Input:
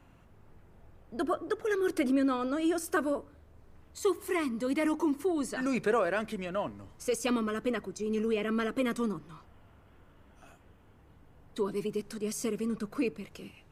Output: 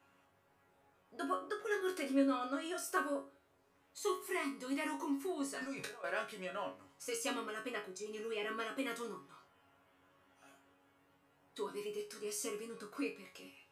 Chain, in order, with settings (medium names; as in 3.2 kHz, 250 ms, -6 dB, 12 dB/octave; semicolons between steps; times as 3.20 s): high-pass 650 Hz 6 dB/octave; 5.58–6.04 s: compressor with a negative ratio -43 dBFS, ratio -1; chord resonator F#2 fifth, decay 0.28 s; trim +7.5 dB